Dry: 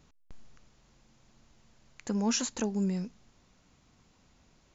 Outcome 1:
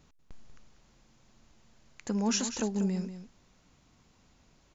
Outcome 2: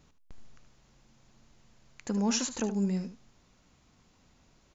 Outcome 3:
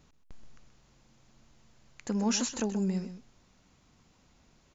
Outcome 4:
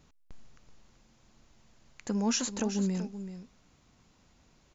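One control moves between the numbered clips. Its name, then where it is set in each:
single-tap delay, delay time: 191, 75, 128, 381 milliseconds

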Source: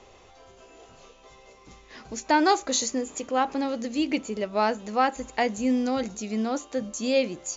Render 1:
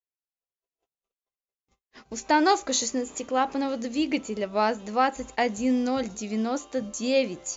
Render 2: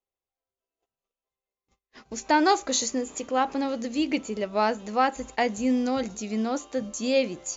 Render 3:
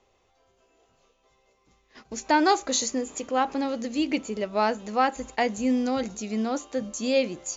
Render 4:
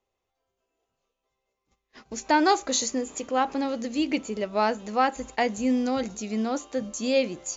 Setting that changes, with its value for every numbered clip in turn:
noise gate, range: −59, −43, −14, −29 decibels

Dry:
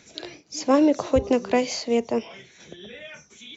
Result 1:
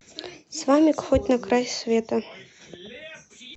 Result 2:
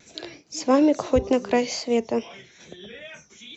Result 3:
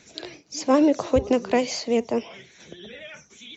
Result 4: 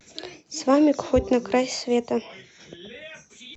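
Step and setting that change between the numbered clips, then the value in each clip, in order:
pitch vibrato, speed: 0.37, 2.3, 12, 0.68 Hertz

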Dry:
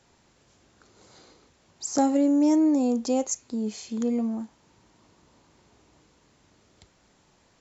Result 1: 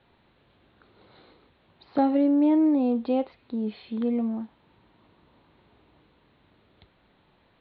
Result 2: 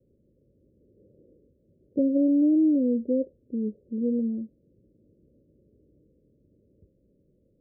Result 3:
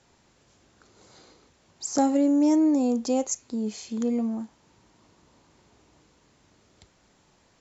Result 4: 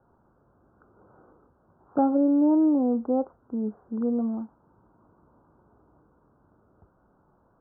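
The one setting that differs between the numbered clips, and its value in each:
Butterworth low-pass, frequency: 4,100, 570, 11,000, 1,500 Hertz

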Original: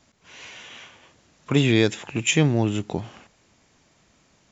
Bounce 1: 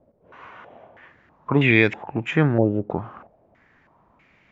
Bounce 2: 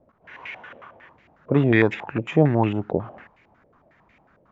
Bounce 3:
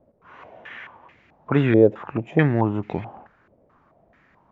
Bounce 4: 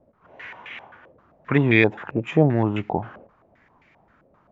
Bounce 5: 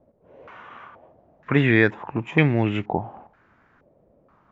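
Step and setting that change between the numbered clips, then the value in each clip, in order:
low-pass on a step sequencer, speed: 3.1, 11, 4.6, 7.6, 2.1 Hertz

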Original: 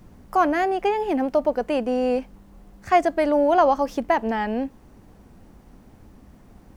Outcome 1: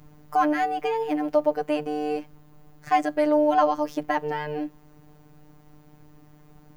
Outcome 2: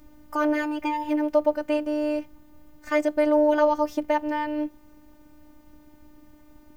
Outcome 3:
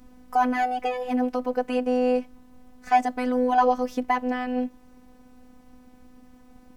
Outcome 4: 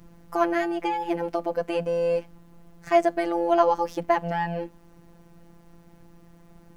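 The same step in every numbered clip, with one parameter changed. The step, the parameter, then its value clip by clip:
phases set to zero, frequency: 150, 300, 250, 170 Hertz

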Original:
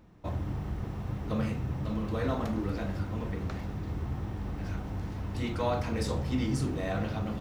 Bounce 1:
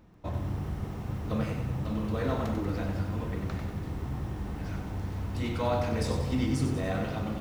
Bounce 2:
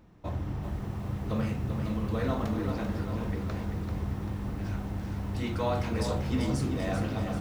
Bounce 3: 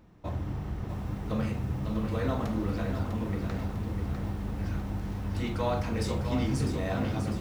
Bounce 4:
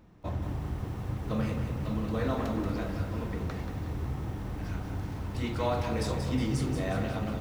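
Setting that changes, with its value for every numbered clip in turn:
feedback echo at a low word length, delay time: 94, 390, 650, 182 milliseconds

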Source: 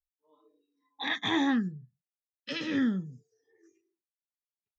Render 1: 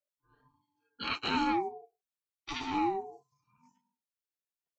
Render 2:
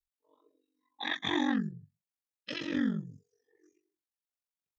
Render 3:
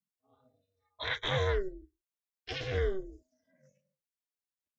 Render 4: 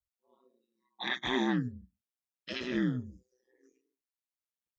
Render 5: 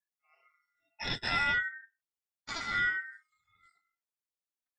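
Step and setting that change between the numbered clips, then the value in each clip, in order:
ring modulation, frequency: 580, 23, 190, 62, 1,700 Hertz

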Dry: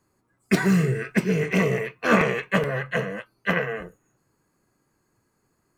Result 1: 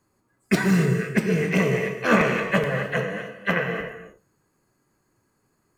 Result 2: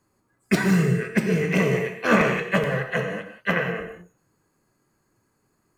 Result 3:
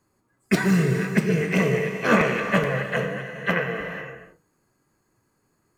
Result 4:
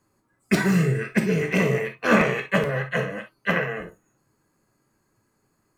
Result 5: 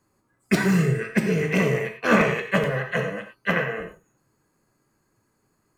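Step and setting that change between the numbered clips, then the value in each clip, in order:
reverb whose tail is shaped and stops, gate: 320, 210, 520, 80, 130 milliseconds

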